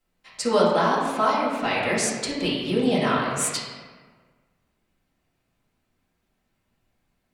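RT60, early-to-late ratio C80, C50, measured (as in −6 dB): 1.5 s, 2.5 dB, 0.5 dB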